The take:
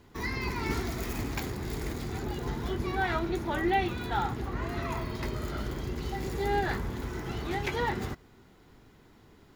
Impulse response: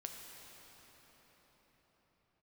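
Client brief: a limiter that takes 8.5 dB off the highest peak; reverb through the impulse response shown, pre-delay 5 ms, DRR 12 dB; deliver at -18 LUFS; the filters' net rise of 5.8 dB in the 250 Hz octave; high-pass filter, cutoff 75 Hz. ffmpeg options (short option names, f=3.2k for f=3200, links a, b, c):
-filter_complex "[0:a]highpass=75,equalizer=f=250:t=o:g=8,alimiter=limit=-22dB:level=0:latency=1,asplit=2[a][b];[1:a]atrim=start_sample=2205,adelay=5[c];[b][c]afir=irnorm=-1:irlink=0,volume=-9.5dB[d];[a][d]amix=inputs=2:normalize=0,volume=14dB"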